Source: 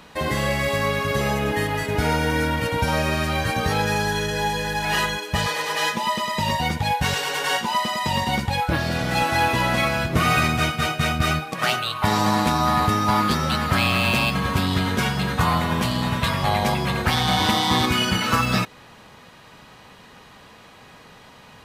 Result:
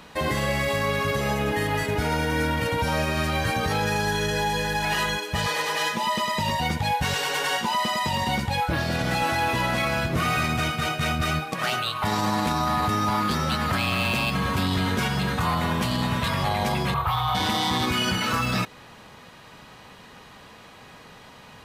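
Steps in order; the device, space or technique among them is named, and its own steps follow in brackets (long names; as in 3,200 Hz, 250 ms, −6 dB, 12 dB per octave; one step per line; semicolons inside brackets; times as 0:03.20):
0:16.94–0:17.35: drawn EQ curve 150 Hz 0 dB, 210 Hz −27 dB, 1,200 Hz +10 dB, 1,600 Hz −10 dB, 3,600 Hz −4 dB, 5,100 Hz −17 dB, 8,700 Hz −14 dB, 14,000 Hz +1 dB
soft clipper into limiter (soft clipping −8.5 dBFS, distortion −26 dB; brickwall limiter −16 dBFS, peak gain reduction 6 dB)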